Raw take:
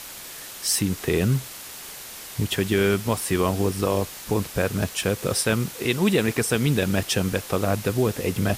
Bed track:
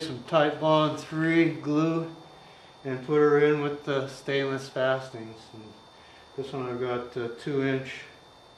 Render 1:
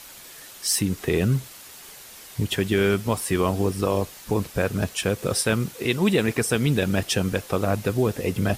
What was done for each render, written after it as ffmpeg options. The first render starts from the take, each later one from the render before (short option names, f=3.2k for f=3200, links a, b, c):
-af "afftdn=nr=6:nf=-39"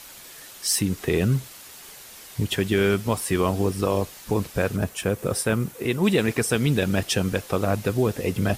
-filter_complex "[0:a]asettb=1/sr,asplit=3[a][b][c];[a]atrim=end=4.764[d];[b]atrim=start=4.76:end=6.04,asetpts=PTS-STARTPTS,afade=t=in:d=0.004:c=qsin,afade=t=out:st=1.276:d=0.004:c=qsin,equalizer=f=4.2k:t=o:w=1.7:g=-7[e];[c]atrim=start=6.036[f];[d][e]acrossfade=d=0.004:c1=hsin:c2=qsin[g];[g][f]acrossfade=d=0.004:c1=qsin:c2=hsin"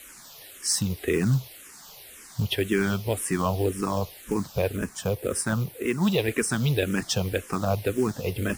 -filter_complex "[0:a]acrusher=bits=5:mode=log:mix=0:aa=0.000001,asplit=2[a][b];[b]afreqshift=-1.9[c];[a][c]amix=inputs=2:normalize=1"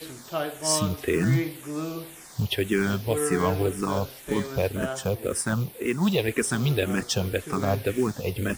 -filter_complex "[1:a]volume=-7dB[a];[0:a][a]amix=inputs=2:normalize=0"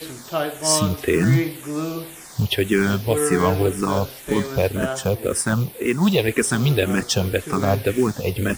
-af "volume=5.5dB"